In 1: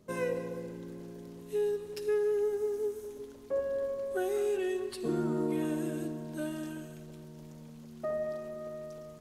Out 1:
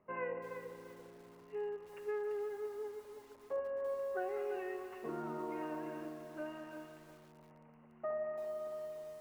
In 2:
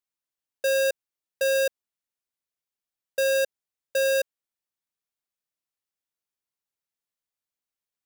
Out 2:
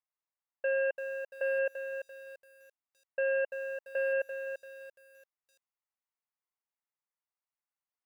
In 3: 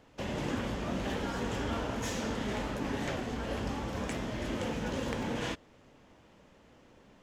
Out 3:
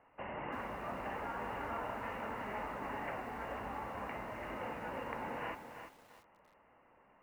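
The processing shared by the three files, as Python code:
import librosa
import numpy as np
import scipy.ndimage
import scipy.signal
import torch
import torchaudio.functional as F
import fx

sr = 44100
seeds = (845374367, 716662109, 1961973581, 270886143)

y = scipy.signal.sosfilt(scipy.signal.cheby1(6, 6, 2900.0, 'lowpass', fs=sr, output='sos'), x)
y = fx.peak_eq(y, sr, hz=1200.0, db=13.0, octaves=1.6)
y = fx.echo_crushed(y, sr, ms=340, feedback_pct=35, bits=8, wet_db=-8)
y = y * 10.0 ** (-9.0 / 20.0)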